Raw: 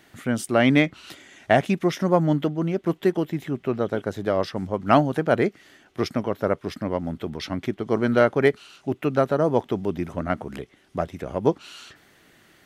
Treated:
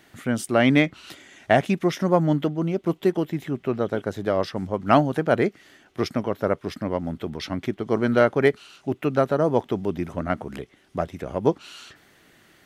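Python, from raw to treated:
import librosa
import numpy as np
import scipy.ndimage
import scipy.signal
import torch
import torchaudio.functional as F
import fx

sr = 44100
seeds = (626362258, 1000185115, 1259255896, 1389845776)

y = fx.peak_eq(x, sr, hz=1700.0, db=-6.5, octaves=0.4, at=(2.6, 3.09))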